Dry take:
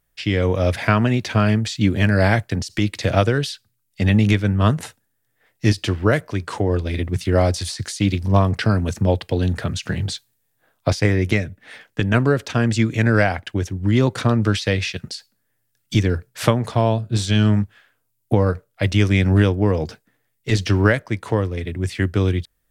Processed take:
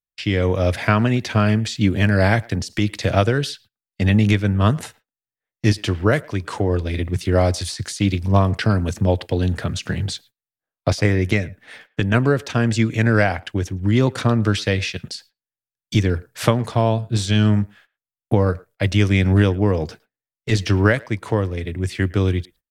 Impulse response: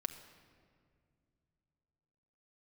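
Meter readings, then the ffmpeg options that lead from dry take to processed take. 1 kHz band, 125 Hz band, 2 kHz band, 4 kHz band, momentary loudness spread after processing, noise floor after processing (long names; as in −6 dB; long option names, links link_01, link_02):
0.0 dB, 0.0 dB, 0.0 dB, 0.0 dB, 9 LU, below −85 dBFS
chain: -filter_complex "[0:a]agate=range=-28dB:threshold=-45dB:ratio=16:detection=peak,asplit=2[link_01][link_02];[link_02]adelay=110,highpass=300,lowpass=3400,asoftclip=type=hard:threshold=-10dB,volume=-23dB[link_03];[link_01][link_03]amix=inputs=2:normalize=0"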